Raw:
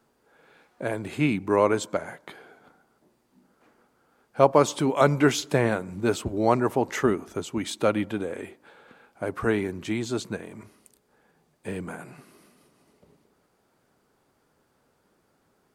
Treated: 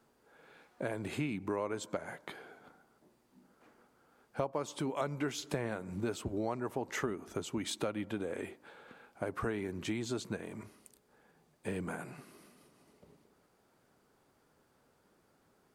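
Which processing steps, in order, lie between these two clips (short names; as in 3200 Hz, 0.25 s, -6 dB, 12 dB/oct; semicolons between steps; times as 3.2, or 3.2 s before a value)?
compressor 6:1, threshold -30 dBFS, peak gain reduction 17.5 dB; gain -2.5 dB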